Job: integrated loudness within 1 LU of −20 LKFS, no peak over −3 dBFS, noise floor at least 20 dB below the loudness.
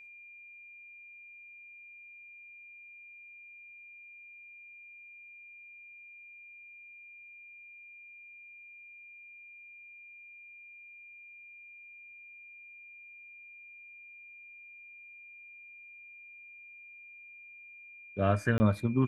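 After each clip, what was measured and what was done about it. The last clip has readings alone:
number of dropouts 1; longest dropout 20 ms; interfering tone 2,400 Hz; level of the tone −49 dBFS; integrated loudness −41.5 LKFS; sample peak −12.5 dBFS; target loudness −20.0 LKFS
→ repair the gap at 0:18.58, 20 ms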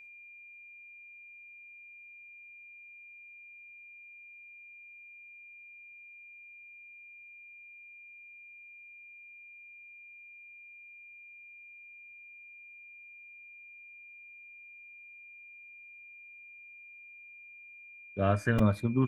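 number of dropouts 0; interfering tone 2,400 Hz; level of the tone −49 dBFS
→ notch filter 2,400 Hz, Q 30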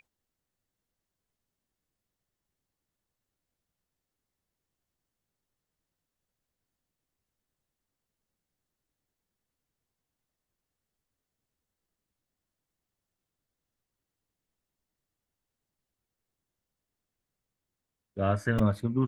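interfering tone none found; integrated loudness −28.5 LKFS; sample peak −12.5 dBFS; target loudness −20.0 LKFS
→ level +8.5 dB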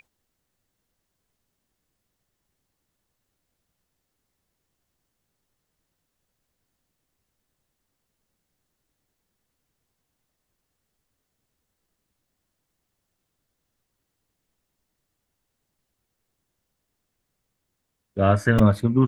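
integrated loudness −20.0 LKFS; sample peak −4.0 dBFS; background noise floor −79 dBFS

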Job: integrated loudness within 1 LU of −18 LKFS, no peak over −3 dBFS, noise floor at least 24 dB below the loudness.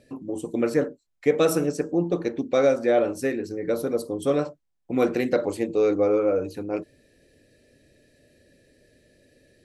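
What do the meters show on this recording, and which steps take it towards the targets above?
integrated loudness −24.5 LKFS; sample peak −7.5 dBFS; target loudness −18.0 LKFS
→ level +6.5 dB
brickwall limiter −3 dBFS

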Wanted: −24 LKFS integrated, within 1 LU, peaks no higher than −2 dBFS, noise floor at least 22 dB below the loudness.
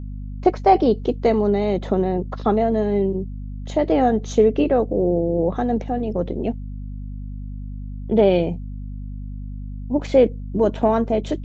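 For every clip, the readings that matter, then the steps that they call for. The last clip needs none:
mains hum 50 Hz; hum harmonics up to 250 Hz; level of the hum −28 dBFS; integrated loudness −20.0 LKFS; sample peak −3.5 dBFS; target loudness −24.0 LKFS
→ mains-hum notches 50/100/150/200/250 Hz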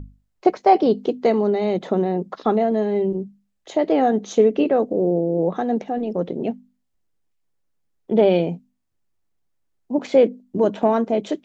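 mains hum none found; integrated loudness −20.5 LKFS; sample peak −3.5 dBFS; target loudness −24.0 LKFS
→ level −3.5 dB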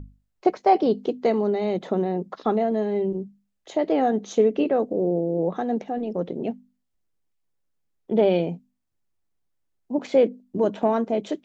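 integrated loudness −24.0 LKFS; sample peak −7.0 dBFS; background noise floor −75 dBFS

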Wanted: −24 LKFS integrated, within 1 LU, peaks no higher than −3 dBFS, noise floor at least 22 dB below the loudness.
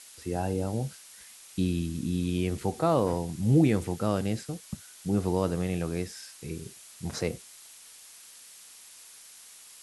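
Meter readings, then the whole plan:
background noise floor −51 dBFS; target noise floor −52 dBFS; integrated loudness −29.5 LKFS; sample peak −11.5 dBFS; target loudness −24.0 LKFS
→ broadband denoise 6 dB, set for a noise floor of −51 dBFS
level +5.5 dB

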